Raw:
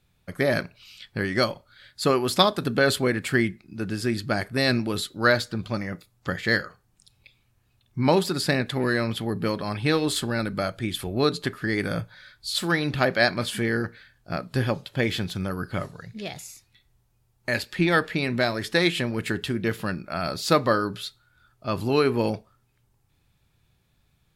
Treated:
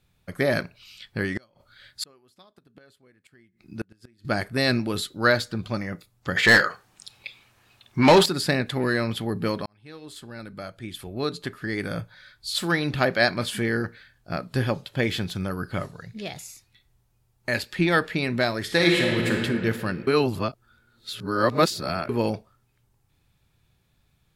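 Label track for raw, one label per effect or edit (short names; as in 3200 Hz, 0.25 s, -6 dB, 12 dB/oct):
1.330000	4.250000	flipped gate shuts at -18 dBFS, range -35 dB
6.360000	8.260000	overdrive pedal drive 22 dB, tone 4400 Hz, clips at -5.5 dBFS
9.660000	12.670000	fade in
18.620000	19.320000	reverb throw, RT60 2.5 s, DRR -1 dB
20.070000	22.090000	reverse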